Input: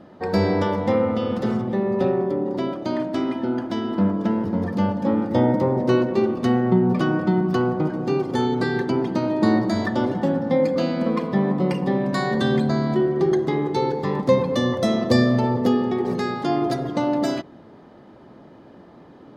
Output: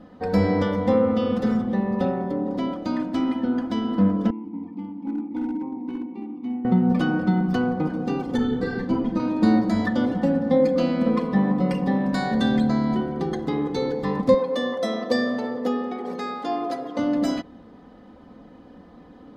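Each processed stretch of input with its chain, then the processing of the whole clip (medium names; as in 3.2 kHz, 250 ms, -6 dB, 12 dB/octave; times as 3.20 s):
4.30–6.65 s: vowel filter u + hard clipper -23 dBFS
8.37–9.20 s: tilt EQ -2 dB/octave + flutter echo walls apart 7.3 m, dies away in 0.34 s + three-phase chorus
14.34–16.99 s: high-pass 470 Hz + tilt EQ -1.5 dB/octave
whole clip: bass shelf 110 Hz +11.5 dB; comb 4 ms, depth 67%; trim -4 dB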